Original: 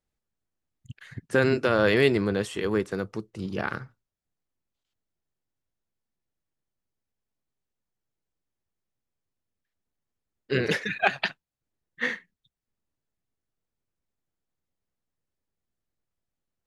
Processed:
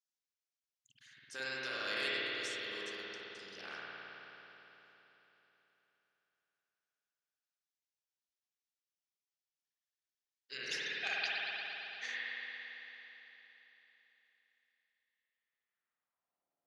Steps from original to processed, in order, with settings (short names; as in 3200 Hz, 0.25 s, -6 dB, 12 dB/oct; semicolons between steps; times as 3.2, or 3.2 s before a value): band-pass sweep 5600 Hz -> 650 Hz, 14.6–16.44; spring tank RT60 3.8 s, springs 53 ms, chirp 70 ms, DRR -8 dB; gain -1 dB